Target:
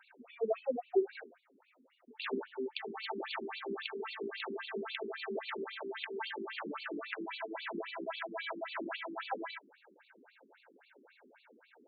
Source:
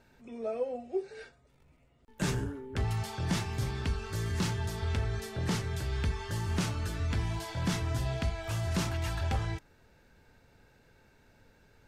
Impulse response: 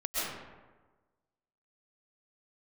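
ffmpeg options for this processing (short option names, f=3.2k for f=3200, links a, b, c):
-af "alimiter=level_in=4dB:limit=-24dB:level=0:latency=1:release=38,volume=-4dB,afftfilt=real='re*between(b*sr/1024,280*pow(3300/280,0.5+0.5*sin(2*PI*3.7*pts/sr))/1.41,280*pow(3300/280,0.5+0.5*sin(2*PI*3.7*pts/sr))*1.41)':imag='im*between(b*sr/1024,280*pow(3300/280,0.5+0.5*sin(2*PI*3.7*pts/sr))/1.41,280*pow(3300/280,0.5+0.5*sin(2*PI*3.7*pts/sr))*1.41)':win_size=1024:overlap=0.75,volume=9dB"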